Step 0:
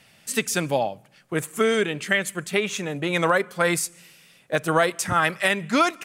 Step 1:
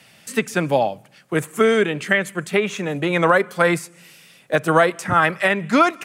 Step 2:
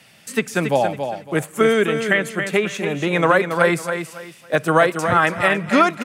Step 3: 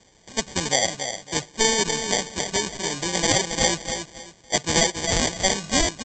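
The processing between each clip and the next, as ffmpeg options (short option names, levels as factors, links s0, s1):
-filter_complex "[0:a]highpass=91,acrossover=split=130|2500[s0][s1][s2];[s2]acompressor=threshold=0.0112:ratio=6[s3];[s0][s1][s3]amix=inputs=3:normalize=0,volume=1.78"
-af "aecho=1:1:278|556|834:0.422|0.11|0.0285"
-af "aresample=16000,acrusher=samples=12:mix=1:aa=0.000001,aresample=44100,crystalizer=i=6:c=0,volume=0.355"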